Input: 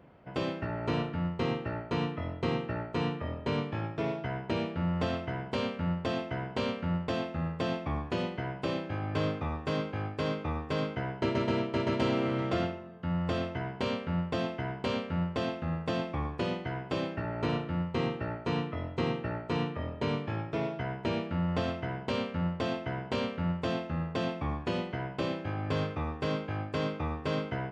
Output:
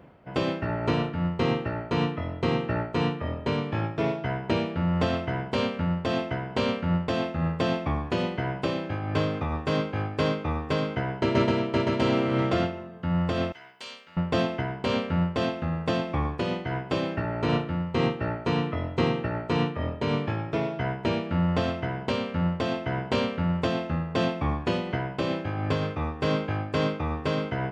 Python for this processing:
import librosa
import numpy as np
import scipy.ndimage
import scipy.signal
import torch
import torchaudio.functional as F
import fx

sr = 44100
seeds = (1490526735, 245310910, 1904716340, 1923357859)

y = fx.differentiator(x, sr, at=(13.52, 14.17))
y = fx.am_noise(y, sr, seeds[0], hz=5.7, depth_pct=55)
y = y * librosa.db_to_amplitude(8.5)